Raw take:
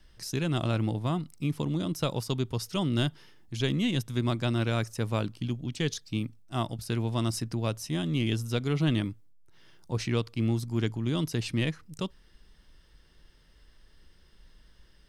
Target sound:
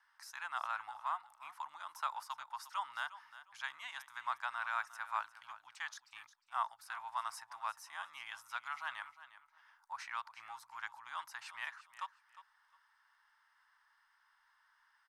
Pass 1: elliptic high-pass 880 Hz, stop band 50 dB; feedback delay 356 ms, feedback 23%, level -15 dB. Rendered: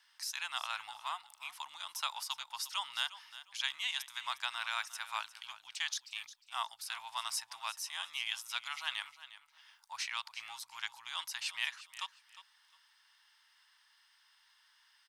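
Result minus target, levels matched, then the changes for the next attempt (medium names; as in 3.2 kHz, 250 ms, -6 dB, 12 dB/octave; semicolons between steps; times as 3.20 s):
4 kHz band +11.0 dB
add after elliptic high-pass: resonant high shelf 2.1 kHz -12.5 dB, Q 1.5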